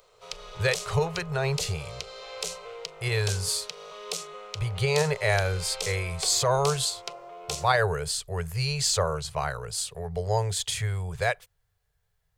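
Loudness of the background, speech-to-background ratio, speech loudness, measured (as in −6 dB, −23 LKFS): −37.0 LKFS, 9.5 dB, −27.5 LKFS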